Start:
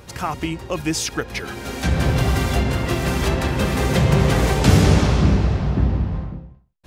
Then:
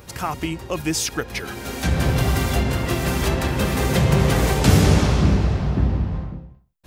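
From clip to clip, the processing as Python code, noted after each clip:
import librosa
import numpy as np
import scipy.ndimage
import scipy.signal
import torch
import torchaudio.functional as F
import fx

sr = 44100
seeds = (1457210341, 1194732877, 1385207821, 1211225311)

y = fx.high_shelf(x, sr, hz=11000.0, db=9.0)
y = F.gain(torch.from_numpy(y), -1.0).numpy()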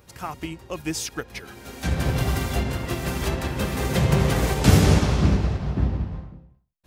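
y = fx.upward_expand(x, sr, threshold_db=-31.0, expansion=1.5)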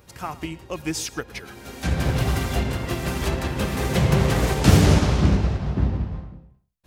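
y = x + 10.0 ** (-20.0 / 20.0) * np.pad(x, (int(112 * sr / 1000.0), 0))[:len(x)]
y = fx.doppler_dist(y, sr, depth_ms=0.37)
y = F.gain(torch.from_numpy(y), 1.0).numpy()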